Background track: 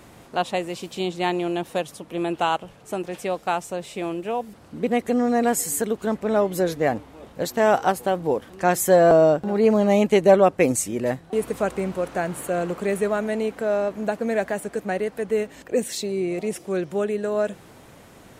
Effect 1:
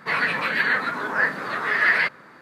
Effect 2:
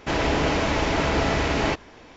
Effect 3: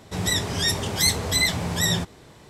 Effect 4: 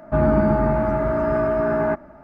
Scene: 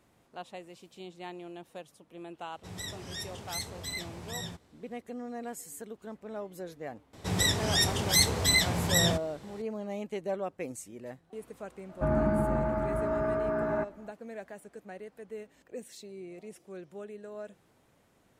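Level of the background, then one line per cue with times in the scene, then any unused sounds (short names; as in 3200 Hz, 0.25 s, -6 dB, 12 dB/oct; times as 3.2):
background track -19 dB
2.52 add 3 -16.5 dB
7.13 add 3 -3 dB
11.89 add 4 -9.5 dB
not used: 1, 2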